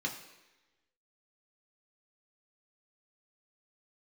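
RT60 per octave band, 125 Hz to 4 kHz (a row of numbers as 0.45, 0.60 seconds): 0.85, 1.0, 1.1, 1.0, 1.2, 1.1 seconds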